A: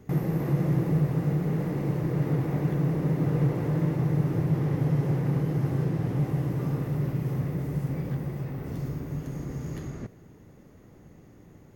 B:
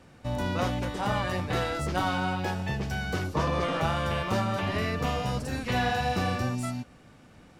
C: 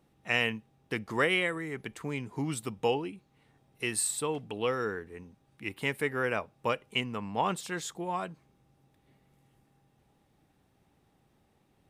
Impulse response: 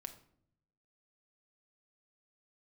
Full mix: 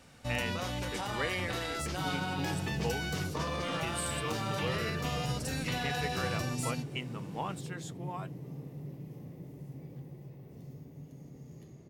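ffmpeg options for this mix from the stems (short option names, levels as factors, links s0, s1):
-filter_complex "[0:a]highpass=100,equalizer=f=1400:w=1.7:g=-13.5,adelay=1850,volume=0.335[s0];[1:a]highshelf=f=2400:g=11,alimiter=limit=0.0944:level=0:latency=1:release=88,volume=0.944[s1];[2:a]volume=0.631[s2];[s0][s1][s2]amix=inputs=3:normalize=0,flanger=delay=1.4:depth=3.1:regen=-80:speed=0.18:shape=sinusoidal"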